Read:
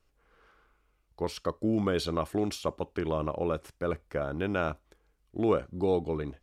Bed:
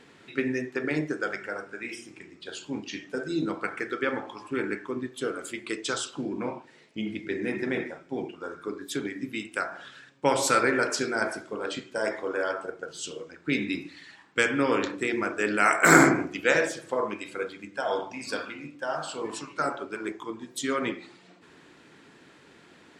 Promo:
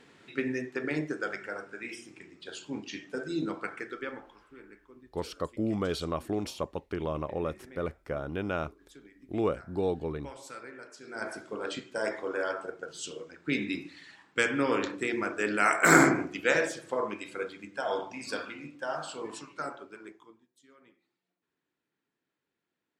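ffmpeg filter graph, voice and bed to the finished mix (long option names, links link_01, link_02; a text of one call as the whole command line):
ffmpeg -i stem1.wav -i stem2.wav -filter_complex "[0:a]adelay=3950,volume=-2.5dB[link_01];[1:a]volume=15.5dB,afade=type=out:start_time=3.47:duration=1:silence=0.11885,afade=type=in:start_time=11.02:duration=0.45:silence=0.112202,afade=type=out:start_time=18.86:duration=1.62:silence=0.0354813[link_02];[link_01][link_02]amix=inputs=2:normalize=0" out.wav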